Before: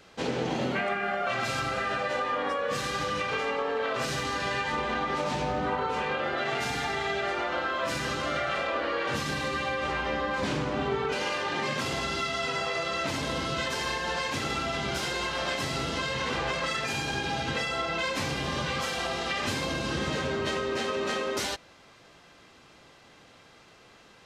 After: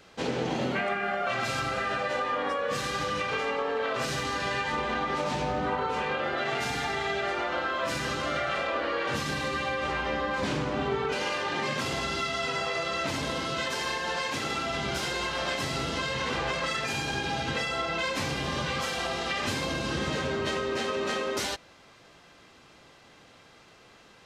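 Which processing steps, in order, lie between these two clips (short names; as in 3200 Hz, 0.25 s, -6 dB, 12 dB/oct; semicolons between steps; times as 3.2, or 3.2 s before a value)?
13.3–14.71 low shelf 98 Hz -10 dB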